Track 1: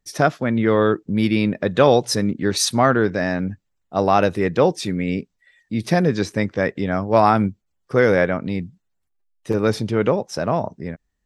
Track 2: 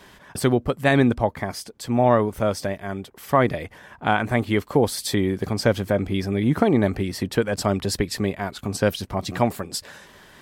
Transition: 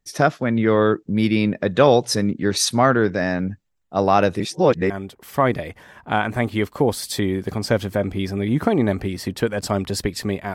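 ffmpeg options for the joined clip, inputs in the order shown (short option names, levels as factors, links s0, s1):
-filter_complex "[0:a]apad=whole_dur=10.54,atrim=end=10.54,asplit=2[s0][s1];[s0]atrim=end=4.402[s2];[s1]atrim=start=4.398:end=4.902,asetpts=PTS-STARTPTS,areverse[s3];[1:a]atrim=start=2.848:end=8.49[s4];[s2][s3]acrossfade=d=0.004:c1=hsin:c2=hsin[s5];[s5][s4]acrossfade=d=0.004:c1=hsin:c2=hsin"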